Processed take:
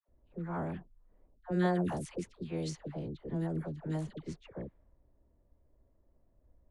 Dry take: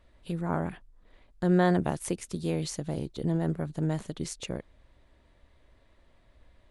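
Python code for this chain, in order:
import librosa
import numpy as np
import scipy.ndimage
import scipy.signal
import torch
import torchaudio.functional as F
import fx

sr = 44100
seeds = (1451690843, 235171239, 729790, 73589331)

y = fx.dispersion(x, sr, late='lows', ms=87.0, hz=780.0)
y = fx.env_lowpass(y, sr, base_hz=560.0, full_db=-23.5)
y = y * librosa.db_to_amplitude(-6.5)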